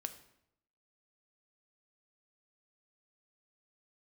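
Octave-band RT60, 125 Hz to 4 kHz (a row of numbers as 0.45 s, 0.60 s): 0.90 s, 0.85 s, 0.80 s, 0.75 s, 0.65 s, 0.60 s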